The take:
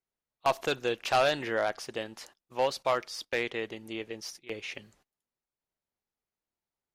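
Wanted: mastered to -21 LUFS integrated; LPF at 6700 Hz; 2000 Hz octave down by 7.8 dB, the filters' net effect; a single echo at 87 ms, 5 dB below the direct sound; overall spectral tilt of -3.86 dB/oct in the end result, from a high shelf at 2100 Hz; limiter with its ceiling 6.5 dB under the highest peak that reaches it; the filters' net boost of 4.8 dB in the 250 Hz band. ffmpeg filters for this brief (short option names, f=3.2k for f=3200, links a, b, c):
-af "lowpass=6.7k,equalizer=f=250:t=o:g=7,equalizer=f=2k:t=o:g=-8,highshelf=f=2.1k:g=-4.5,alimiter=limit=-21.5dB:level=0:latency=1,aecho=1:1:87:0.562,volume=13.5dB"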